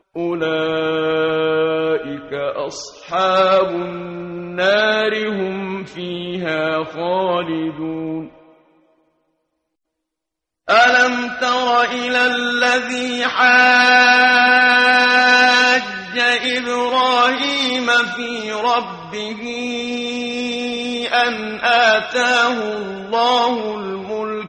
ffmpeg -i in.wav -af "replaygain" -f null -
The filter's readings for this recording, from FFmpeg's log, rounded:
track_gain = -4.3 dB
track_peak = 0.586